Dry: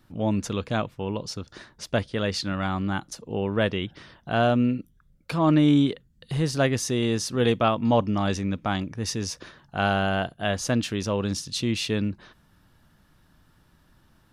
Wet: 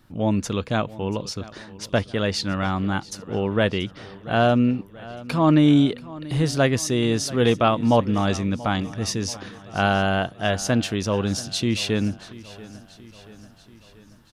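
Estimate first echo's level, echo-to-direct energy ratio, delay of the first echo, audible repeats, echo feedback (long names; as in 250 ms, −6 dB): −19.0 dB, −17.5 dB, 684 ms, 4, 57%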